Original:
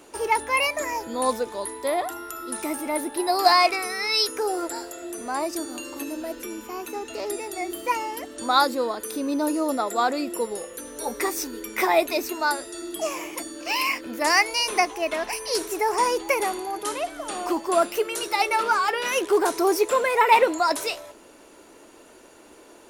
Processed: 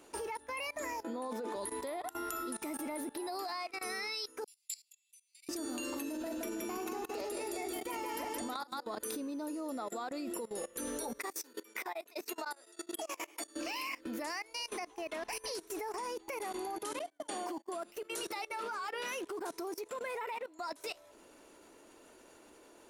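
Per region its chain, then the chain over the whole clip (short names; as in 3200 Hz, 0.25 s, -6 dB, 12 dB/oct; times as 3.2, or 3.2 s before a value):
1.03–1.56 high shelf 2700 Hz -10 dB + negative-ratio compressor -30 dBFS + HPF 230 Hz 24 dB/oct
4.44–5.49 steep high-pass 2200 Hz 96 dB/oct + gate -39 dBFS, range -23 dB
6.09–8.87 level quantiser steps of 18 dB + tapped delay 43/171/325 ms -10/-3.5/-8.5 dB
11.18–13.56 HPF 450 Hz + beating tremolo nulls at 9.8 Hz
16.99–17.76 HPF 120 Hz 6 dB/oct + gate -33 dBFS, range -34 dB + notch comb 1300 Hz
whole clip: compressor 12:1, threshold -33 dBFS; dynamic EQ 230 Hz, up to +4 dB, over -50 dBFS, Q 1.6; level quantiser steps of 20 dB; gain +1 dB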